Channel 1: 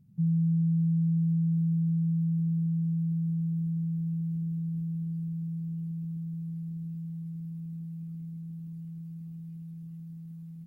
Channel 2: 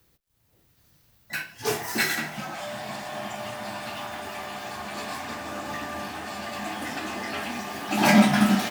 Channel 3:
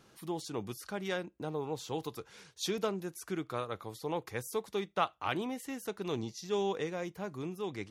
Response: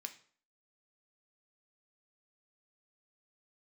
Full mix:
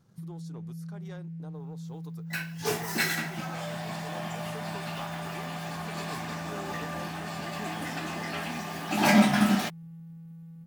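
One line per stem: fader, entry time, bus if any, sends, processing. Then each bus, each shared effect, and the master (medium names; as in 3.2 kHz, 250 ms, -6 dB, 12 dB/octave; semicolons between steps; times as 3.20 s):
-6.5 dB, 0.00 s, bus A, no send, peak limiter -31 dBFS, peak gain reduction 9.5 dB
-3.0 dB, 1.00 s, no bus, no send, expander -51 dBFS
-11.0 dB, 0.00 s, bus A, no send, peaking EQ 2.7 kHz -8 dB 0.77 oct
bus A: 0.0 dB, waveshaping leveller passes 1; compression, threshold -37 dBFS, peak gain reduction 5 dB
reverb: none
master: none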